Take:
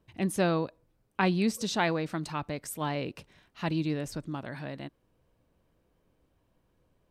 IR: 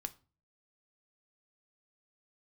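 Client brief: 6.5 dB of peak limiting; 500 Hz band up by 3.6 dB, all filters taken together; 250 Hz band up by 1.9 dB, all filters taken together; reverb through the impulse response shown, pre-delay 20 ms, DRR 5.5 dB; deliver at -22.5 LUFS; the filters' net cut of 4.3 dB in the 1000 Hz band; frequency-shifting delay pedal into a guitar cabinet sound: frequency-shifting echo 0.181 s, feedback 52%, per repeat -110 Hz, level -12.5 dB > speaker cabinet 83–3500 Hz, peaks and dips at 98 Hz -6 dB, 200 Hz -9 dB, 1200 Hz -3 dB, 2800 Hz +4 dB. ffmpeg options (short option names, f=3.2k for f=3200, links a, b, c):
-filter_complex "[0:a]equalizer=f=250:t=o:g=6,equalizer=f=500:t=o:g=5,equalizer=f=1k:t=o:g=-8,alimiter=limit=-18.5dB:level=0:latency=1,asplit=2[a][b];[1:a]atrim=start_sample=2205,adelay=20[c];[b][c]afir=irnorm=-1:irlink=0,volume=-3dB[d];[a][d]amix=inputs=2:normalize=0,asplit=6[e][f][g][h][i][j];[f]adelay=181,afreqshift=-110,volume=-12.5dB[k];[g]adelay=362,afreqshift=-220,volume=-18.2dB[l];[h]adelay=543,afreqshift=-330,volume=-23.9dB[m];[i]adelay=724,afreqshift=-440,volume=-29.5dB[n];[j]adelay=905,afreqshift=-550,volume=-35.2dB[o];[e][k][l][m][n][o]amix=inputs=6:normalize=0,highpass=83,equalizer=f=98:t=q:w=4:g=-6,equalizer=f=200:t=q:w=4:g=-9,equalizer=f=1.2k:t=q:w=4:g=-3,equalizer=f=2.8k:t=q:w=4:g=4,lowpass=f=3.5k:w=0.5412,lowpass=f=3.5k:w=1.3066,volume=8.5dB"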